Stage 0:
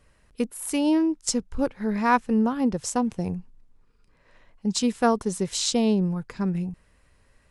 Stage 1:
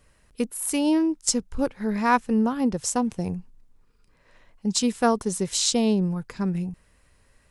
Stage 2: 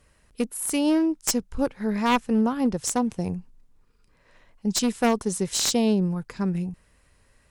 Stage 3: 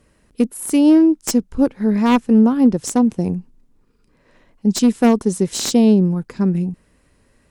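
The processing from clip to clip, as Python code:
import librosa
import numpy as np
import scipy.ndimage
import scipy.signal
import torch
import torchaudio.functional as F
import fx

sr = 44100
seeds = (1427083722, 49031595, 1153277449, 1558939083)

y1 = fx.high_shelf(x, sr, hz=5800.0, db=6.0)
y2 = np.minimum(y1, 2.0 * 10.0 ** (-18.5 / 20.0) - y1)
y2 = fx.cheby_harmonics(y2, sr, harmonics=(8,), levels_db=(-38,), full_scale_db=-6.0)
y3 = fx.peak_eq(y2, sr, hz=270.0, db=10.0, octaves=1.8)
y3 = y3 * 10.0 ** (1.0 / 20.0)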